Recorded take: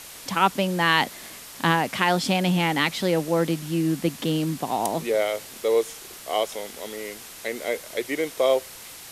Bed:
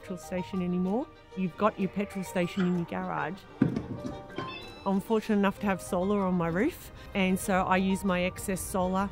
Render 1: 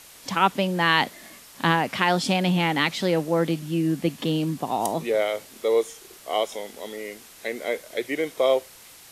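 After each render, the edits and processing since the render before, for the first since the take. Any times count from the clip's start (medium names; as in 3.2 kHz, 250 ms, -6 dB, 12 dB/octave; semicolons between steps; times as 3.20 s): noise print and reduce 6 dB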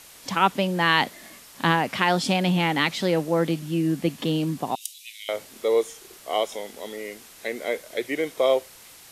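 4.75–5.29 s: steep high-pass 2.5 kHz 48 dB/octave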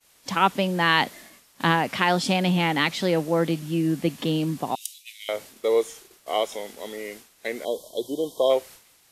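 7.65–8.50 s: spectral selection erased 1.1–3 kHz; expander -39 dBFS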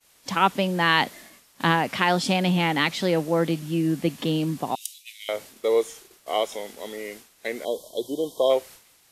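no audible change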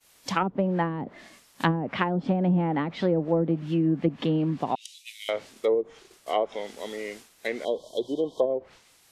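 low-pass that closes with the level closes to 370 Hz, closed at -16.5 dBFS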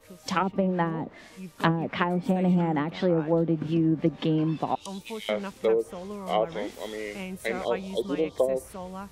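add bed -10 dB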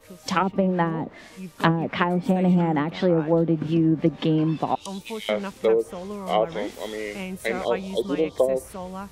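trim +3.5 dB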